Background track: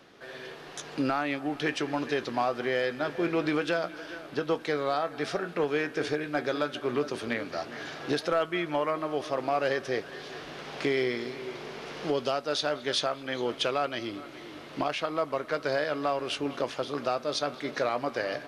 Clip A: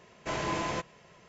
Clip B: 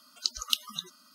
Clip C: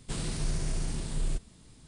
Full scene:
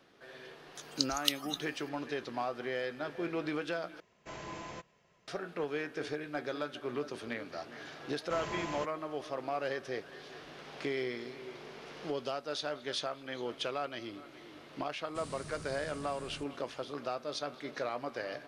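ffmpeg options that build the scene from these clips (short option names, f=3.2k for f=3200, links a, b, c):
-filter_complex "[1:a]asplit=2[a][b];[0:a]volume=-8dB[c];[3:a]highpass=82[d];[c]asplit=2[e][f];[e]atrim=end=4.004[g];[a]atrim=end=1.28,asetpts=PTS-STARTPTS,volume=-12dB[h];[f]atrim=start=5.276[i];[2:a]atrim=end=1.14,asetpts=PTS-STARTPTS,volume=-2.5dB,afade=t=in:d=0.004:c=hsin,afade=t=out:st=1.136:d=0.004:c=hsin,adelay=750[j];[b]atrim=end=1.28,asetpts=PTS-STARTPTS,volume=-7.5dB,afade=t=in:d=0.004:c=hsin,afade=t=out:st=1.276:d=0.004:c=hsin,adelay=8040[k];[d]atrim=end=1.87,asetpts=PTS-STARTPTS,volume=-11dB,afade=t=in:d=0.004:c=hsin,afade=t=out:st=1.866:d=0.004:c=hsin,adelay=15060[l];[g][h]acrossfade=d=0.004:c1=hsin:c2=hsin[m];[m][i]acrossfade=d=0.004:c1=hsin:c2=hsin[n];[n][j][k][l]amix=inputs=4:normalize=0"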